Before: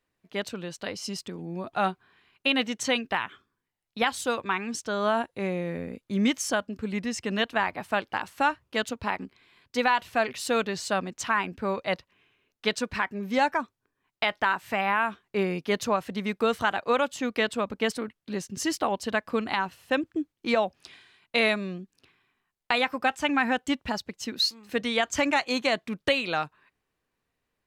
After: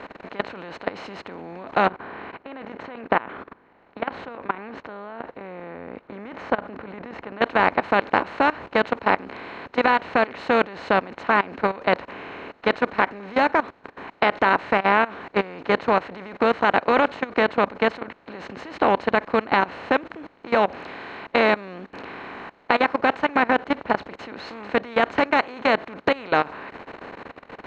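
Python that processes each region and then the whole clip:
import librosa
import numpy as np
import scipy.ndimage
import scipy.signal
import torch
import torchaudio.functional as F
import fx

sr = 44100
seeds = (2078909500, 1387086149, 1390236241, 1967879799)

y = fx.chain(x, sr, fx.lowpass(hz=1500.0, slope=12),
    fx.level_steps(step_db=10), at=(1.87, 7.42))
y = fx.chain(y, sr, fx.block_float(bits=7),
    fx.lowpass(hz=2400.0, slope=6), at=(23.43, 24.01))
y = fx.bin_compress(y, sr, power=0.4)
y = scipy.signal.sosfilt(scipy.signal.butter(2, 2000.0, 'lowpass', fs=sr, output='sos'), y)
y = fx.level_steps(y, sr, step_db=20)
y = F.gain(torch.from_numpy(y), 3.0).numpy()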